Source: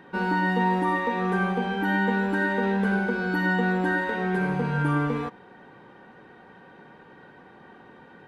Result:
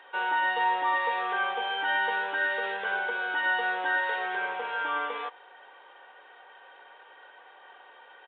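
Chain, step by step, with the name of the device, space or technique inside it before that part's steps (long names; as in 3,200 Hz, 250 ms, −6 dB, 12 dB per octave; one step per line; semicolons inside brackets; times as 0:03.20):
0:02.34–0:02.85: parametric band 900 Hz −9 dB 0.22 octaves
musical greeting card (downsampling to 8,000 Hz; high-pass filter 560 Hz 24 dB per octave; parametric band 3,200 Hz +8 dB 0.46 octaves)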